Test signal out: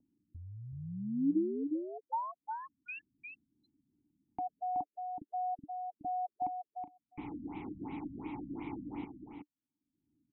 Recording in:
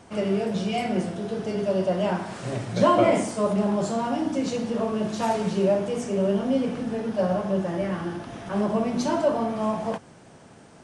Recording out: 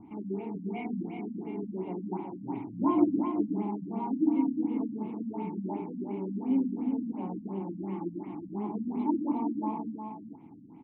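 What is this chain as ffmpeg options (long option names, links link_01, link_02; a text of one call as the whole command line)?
ffmpeg -i in.wav -filter_complex "[0:a]asplit=3[link_01][link_02][link_03];[link_01]bandpass=frequency=300:width_type=q:width=8,volume=0dB[link_04];[link_02]bandpass=frequency=870:width_type=q:width=8,volume=-6dB[link_05];[link_03]bandpass=frequency=2240:width_type=q:width=8,volume=-9dB[link_06];[link_04][link_05][link_06]amix=inputs=3:normalize=0,acrossover=split=220|570|2300[link_07][link_08][link_09][link_10];[link_07]acompressor=mode=upward:threshold=-48dB:ratio=2.5[link_11];[link_11][link_08][link_09][link_10]amix=inputs=4:normalize=0,highshelf=frequency=2500:gain=-8,aecho=1:1:373:0.501,afftfilt=real='re*lt(b*sr/1024,270*pow(4100/270,0.5+0.5*sin(2*PI*2.8*pts/sr)))':imag='im*lt(b*sr/1024,270*pow(4100/270,0.5+0.5*sin(2*PI*2.8*pts/sr)))':win_size=1024:overlap=0.75,volume=5.5dB" out.wav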